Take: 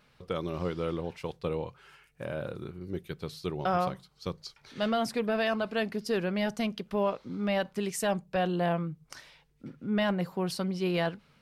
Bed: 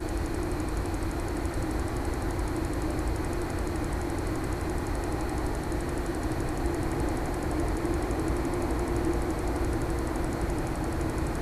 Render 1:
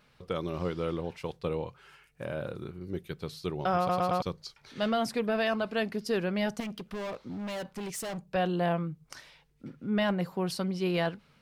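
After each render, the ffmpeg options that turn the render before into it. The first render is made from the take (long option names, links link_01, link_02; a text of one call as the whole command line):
ffmpeg -i in.wav -filter_complex "[0:a]asettb=1/sr,asplit=3[link_01][link_02][link_03];[link_01]atrim=end=6.604[link_04];[link_02]atrim=start=6.6:end=8.31,asetpts=PTS-STARTPTS,afade=type=in:duration=0.004:curve=qsin,afade=type=out:start_time=1.706:duration=0.004:curve=qsin,volume=34dB,asoftclip=hard,volume=-34dB[link_05];[link_03]atrim=start=8.306[link_06];[link_04][link_05]acrossfade=duration=0.004:curve1=hsin:curve2=qsin[link_07];[link_07][link_06]acrossfade=duration=0.004:curve1=qsin:curve2=hsin,asplit=5[link_08][link_09][link_10][link_11][link_12];[link_08]atrim=end=3.892[link_13];[link_09]atrim=start=3.778:end=3.892[link_14];[link_10]atrim=start=3.778:end=3.892[link_15];[link_11]atrim=start=3.778:end=3.892[link_16];[link_12]atrim=start=4.218[link_17];[link_13][link_14]acrossfade=duration=0.004:curve1=hsin:curve2=hsin[link_18];[link_18][link_15]acrossfade=duration=0.004:curve1=hsin:curve2=hsin[link_19];[link_19][link_16]acrossfade=duration=0.004:curve1=hsin:curve2=hsin[link_20];[link_20][link_17]acrossfade=duration=0.004:curve1=hsin:curve2=hsin" out.wav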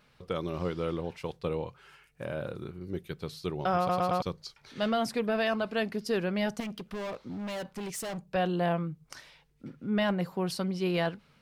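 ffmpeg -i in.wav -af anull out.wav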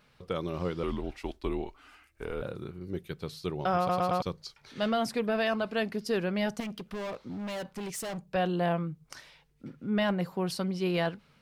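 ffmpeg -i in.wav -filter_complex "[0:a]asettb=1/sr,asplit=3[link_01][link_02][link_03];[link_01]atrim=end=0.834[link_04];[link_02]atrim=start=0.83:end=2.42,asetpts=PTS-STARTPTS,afade=type=in:duration=0.004:curve=qsin,afade=type=out:start_time=1.586:duration=0.004:curve=qsin,afreqshift=-120[link_05];[link_03]atrim=start=2.416[link_06];[link_04][link_05]acrossfade=duration=0.004:curve1=hsin:curve2=qsin[link_07];[link_07][link_06]acrossfade=duration=0.004:curve1=qsin:curve2=hsin" out.wav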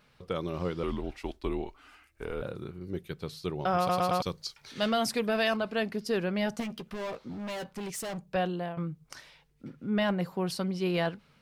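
ffmpeg -i in.wav -filter_complex "[0:a]asettb=1/sr,asplit=3[link_01][link_02][link_03];[link_01]atrim=end=3.784[link_04];[link_02]atrim=start=3.78:end=5.57,asetpts=PTS-STARTPTS,afade=type=in:duration=0.004:curve=qsin,afade=type=out:start_time=1.786:duration=0.004:curve=qsin,highshelf=frequency=2900:gain=8[link_05];[link_03]atrim=start=5.566[link_06];[link_04][link_05]acrossfade=duration=0.004:curve1=hsin:curve2=qsin[link_07];[link_07][link_06]acrossfade=duration=0.004:curve1=qsin:curve2=hsin,asettb=1/sr,asplit=3[link_08][link_09][link_10];[link_08]atrim=end=6.514[link_11];[link_09]atrim=start=6.51:end=7.67,asetpts=PTS-STARTPTS,afade=type=in:duration=0.004:curve=qsin,afade=type=out:start_time=1.156:duration=0.004:curve=qsin,asplit=2[link_12][link_13];[link_13]adelay=13,volume=-9dB[link_14];[link_12][link_14]amix=inputs=2:normalize=0,atrim=end_sample=51156[link_15];[link_10]atrim=start=7.666[link_16];[link_11][link_15]acrossfade=duration=0.004:curve1=hsin:curve2=qsin[link_17];[link_17][link_16]acrossfade=duration=0.004:curve1=qsin:curve2=hsin,asplit=2[link_18][link_19];[link_18]atrim=end=8.77,asetpts=PTS-STARTPTS,afade=type=out:start_time=8.37:duration=0.4:silence=0.199526[link_20];[link_19]atrim=start=8.77,asetpts=PTS-STARTPTS,afade=type=in:duration=0.004:curve=hsin:silence=0.199526[link_21];[link_20][link_21]concat=n=2:v=0:a=1" out.wav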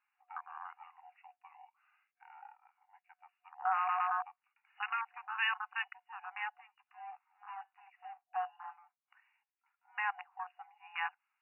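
ffmpeg -i in.wav -af "afwtdn=0.02,afftfilt=real='re*between(b*sr/4096,730,2900)':imag='im*between(b*sr/4096,730,2900)':win_size=4096:overlap=0.75" out.wav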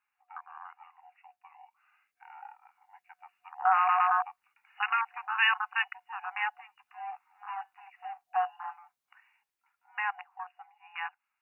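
ffmpeg -i in.wav -af "dynaudnorm=framelen=240:gausssize=17:maxgain=8dB" out.wav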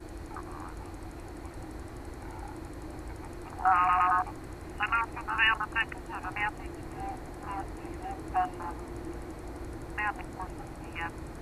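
ffmpeg -i in.wav -i bed.wav -filter_complex "[1:a]volume=-12dB[link_01];[0:a][link_01]amix=inputs=2:normalize=0" out.wav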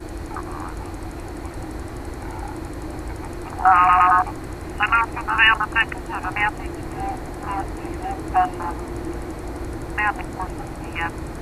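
ffmpeg -i in.wav -af "volume=10.5dB,alimiter=limit=-3dB:level=0:latency=1" out.wav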